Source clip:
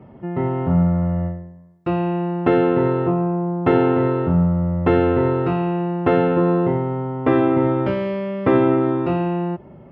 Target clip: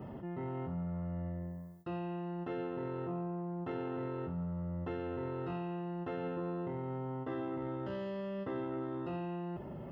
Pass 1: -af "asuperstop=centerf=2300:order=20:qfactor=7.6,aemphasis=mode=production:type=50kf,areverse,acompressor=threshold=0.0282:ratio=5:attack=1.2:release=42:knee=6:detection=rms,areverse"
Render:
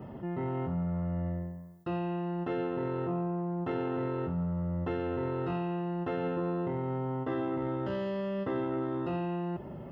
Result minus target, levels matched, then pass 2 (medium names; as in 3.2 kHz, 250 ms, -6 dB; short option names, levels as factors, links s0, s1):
compression: peak gain reduction -6 dB
-af "asuperstop=centerf=2300:order=20:qfactor=7.6,aemphasis=mode=production:type=50kf,areverse,acompressor=threshold=0.0119:ratio=5:attack=1.2:release=42:knee=6:detection=rms,areverse"